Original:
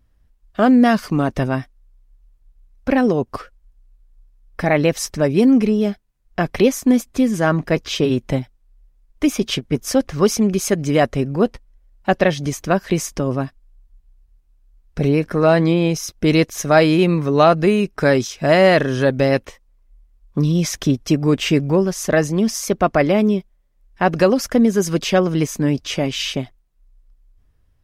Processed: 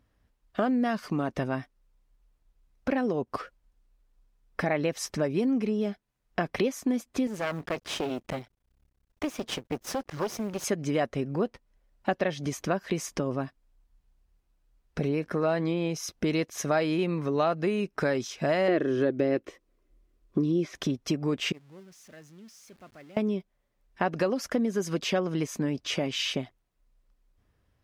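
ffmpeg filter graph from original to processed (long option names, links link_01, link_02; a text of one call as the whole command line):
ffmpeg -i in.wav -filter_complex "[0:a]asettb=1/sr,asplit=3[link_01][link_02][link_03];[link_01]atrim=end=7.274[link_04];[link_02]atrim=start=7.27:end=10.64,asetpts=PTS-STARTPTS,afade=type=in:duration=0.004:curve=qsin,afade=type=out:start_time=3.366:duration=0.004:curve=qsin,aeval=exprs='max(val(0),0)':channel_layout=same,acrusher=bits=8:mode=log:mix=0:aa=0.000001[link_05];[link_03]atrim=start=10.636[link_06];[link_04][link_05]acrossfade=duration=0.004:curve1=hsin:curve2=qsin[link_07];[link_07][link_06]acrossfade=duration=0.004:curve1=qsin:curve2=hsin,asettb=1/sr,asplit=3[link_08][link_09][link_10];[link_08]atrim=end=18.684[link_11];[link_09]atrim=start=18.68:end=20.75,asetpts=PTS-STARTPTS,afade=type=in:duration=0.004:curve=qsin,afade=type=out:start_time=2.066:duration=0.004:curve=qsin,acrossover=split=3400[link_12][link_13];[link_13]acompressor=threshold=-40dB:ratio=4:attack=1:release=60[link_14];[link_12][link_14]amix=inputs=2:normalize=0,equalizer=frequency=340:width_type=o:width=0.68:gain=14,bandreject=frequency=880:width=5.9[link_15];[link_10]atrim=start=20.746[link_16];[link_11][link_15]acrossfade=duration=0.004:curve1=hsin:curve2=qsin[link_17];[link_17][link_16]acrossfade=duration=0.004:curve1=qsin:curve2=hsin,asettb=1/sr,asplit=3[link_18][link_19][link_20];[link_18]atrim=end=21.524[link_21];[link_19]atrim=start=21.52:end=23.17,asetpts=PTS-STARTPTS,afade=type=in:duration=0.004:curve=qsin,afade=type=out:start_time=1.646:duration=0.004:curve=qsin,aeval=exprs='val(0)+0.5*0.112*sgn(val(0))':channel_layout=same,equalizer=frequency=620:width_type=o:width=2.2:gain=-7,agate=range=-30dB:threshold=-12dB:ratio=16:release=100:detection=peak[link_22];[link_20]atrim=start=23.166[link_23];[link_21][link_22]acrossfade=duration=0.004:curve1=hsin:curve2=qsin[link_24];[link_24][link_23]acrossfade=duration=0.004:curve1=qsin:curve2=hsin,acompressor=threshold=-26dB:ratio=3,highpass=frequency=180:poles=1,highshelf=frequency=6100:gain=-7" out.wav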